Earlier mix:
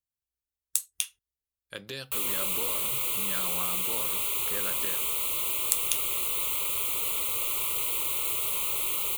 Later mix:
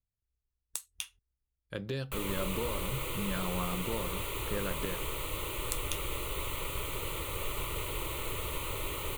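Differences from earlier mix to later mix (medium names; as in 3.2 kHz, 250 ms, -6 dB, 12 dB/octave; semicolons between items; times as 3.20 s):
background: remove Butterworth band-stop 1.7 kHz, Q 2.4; master: add tilt EQ -3.5 dB/octave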